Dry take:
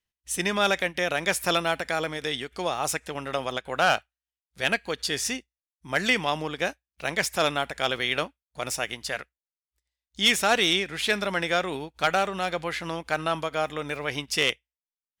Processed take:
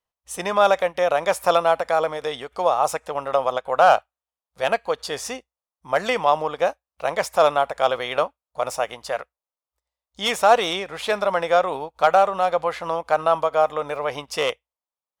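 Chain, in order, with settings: band shelf 770 Hz +13.5 dB; gain -3.5 dB

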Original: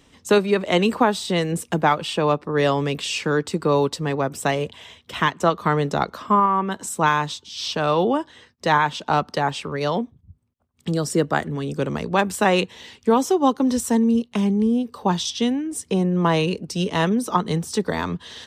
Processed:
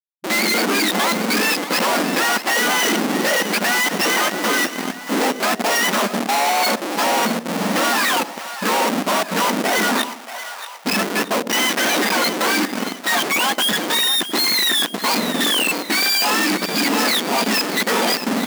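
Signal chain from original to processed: spectrum mirrored in octaves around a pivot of 920 Hz; in parallel at +2.5 dB: limiter -15 dBFS, peak gain reduction 9 dB; 9.89–11.53 on the sum: compressor 3:1, threshold -26 dBFS, peak gain reduction 11.5 dB; Schmitt trigger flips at -26 dBFS; brick-wall FIR high-pass 180 Hz; on a send: split-band echo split 630 Hz, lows 81 ms, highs 0.631 s, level -12 dB

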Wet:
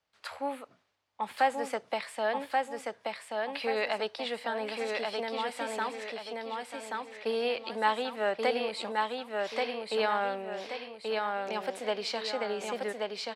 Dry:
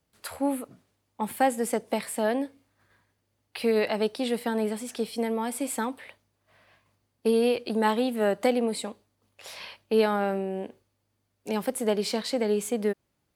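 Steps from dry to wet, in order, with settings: three-band isolator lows -16 dB, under 570 Hz, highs -22 dB, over 5900 Hz; on a send: feedback echo 1.131 s, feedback 40%, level -3 dB

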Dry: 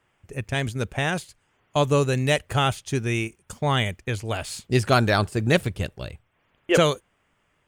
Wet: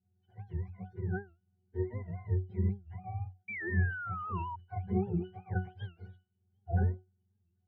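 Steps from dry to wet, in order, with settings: spectrum mirrored in octaves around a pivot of 520 Hz; octave resonator F#, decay 0.26 s; painted sound fall, 3.48–4.56, 930–2200 Hz -38 dBFS; record warp 78 rpm, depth 160 cents; gain -1.5 dB

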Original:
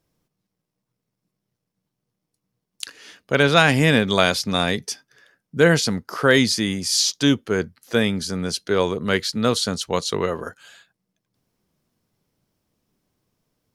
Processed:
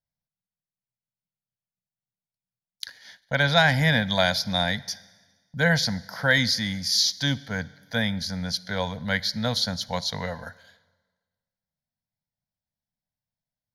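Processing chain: gate -45 dBFS, range -17 dB; bell 390 Hz -10.5 dB 0.64 oct; fixed phaser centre 1800 Hz, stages 8; reverb RT60 1.4 s, pre-delay 44 ms, DRR 20 dB

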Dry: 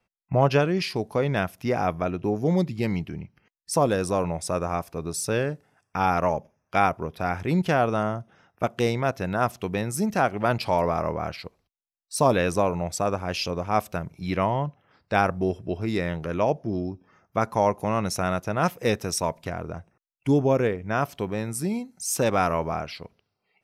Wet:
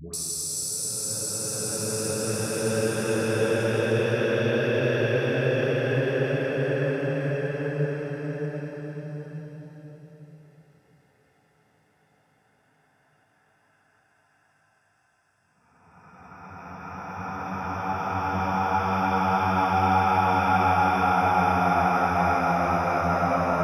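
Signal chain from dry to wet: Paulstretch 23×, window 0.25 s, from 5.17; dispersion highs, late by 0.137 s, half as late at 740 Hz

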